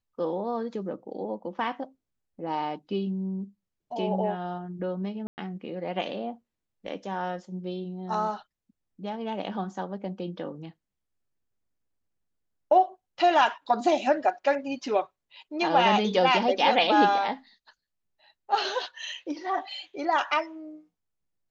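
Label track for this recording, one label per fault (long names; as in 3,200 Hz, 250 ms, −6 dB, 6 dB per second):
5.270000	5.380000	drop-out 109 ms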